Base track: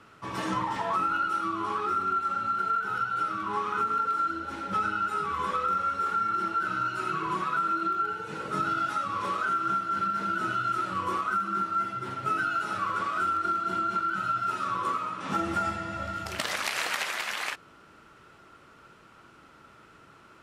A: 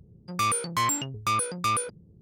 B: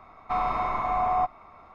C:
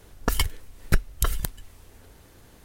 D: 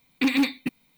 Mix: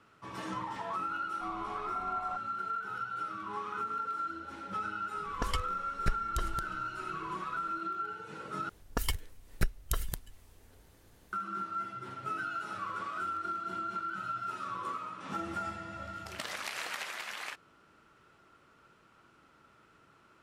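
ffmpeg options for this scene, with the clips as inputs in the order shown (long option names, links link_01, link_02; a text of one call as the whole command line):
ffmpeg -i bed.wav -i cue0.wav -i cue1.wav -i cue2.wav -filter_complex "[3:a]asplit=2[link_01][link_02];[0:a]volume=-8.5dB[link_03];[link_01]lowpass=7300[link_04];[link_03]asplit=2[link_05][link_06];[link_05]atrim=end=8.694[link_07];[link_02]atrim=end=2.64,asetpts=PTS-STARTPTS,volume=-8.5dB[link_08];[link_06]atrim=start=11.326[link_09];[2:a]atrim=end=1.74,asetpts=PTS-STARTPTS,volume=-17dB,afade=type=in:duration=0.004:curve=hsin,afade=type=out:start_time=1.736:duration=0.004:curve=hsin,adelay=1110[link_10];[link_04]atrim=end=2.64,asetpts=PTS-STARTPTS,volume=-10dB,afade=type=in:duration=0.004:curve=hsin,afade=type=out:start_time=2.636:duration=0.004:curve=hsin,adelay=5140[link_11];[link_07][link_08]acrossfade=duration=0.004:curve1=hsin:curve2=hsin[link_12];[link_12][link_09]acrossfade=duration=0.004:curve1=hsin:curve2=hsin[link_13];[link_13][link_10][link_11]amix=inputs=3:normalize=0" out.wav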